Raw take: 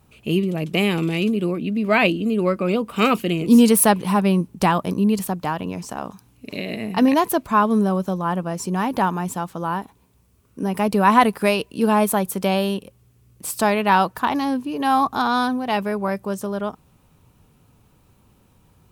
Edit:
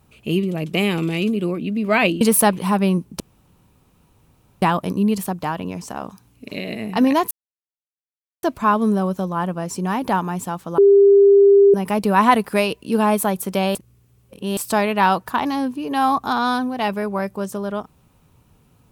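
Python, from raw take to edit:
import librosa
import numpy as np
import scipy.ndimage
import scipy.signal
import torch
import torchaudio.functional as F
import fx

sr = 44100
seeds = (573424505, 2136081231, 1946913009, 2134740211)

y = fx.edit(x, sr, fx.cut(start_s=2.21, length_s=1.43),
    fx.insert_room_tone(at_s=4.63, length_s=1.42),
    fx.insert_silence(at_s=7.32, length_s=1.12),
    fx.bleep(start_s=9.67, length_s=0.96, hz=399.0, db=-7.5),
    fx.reverse_span(start_s=12.64, length_s=0.82), tone=tone)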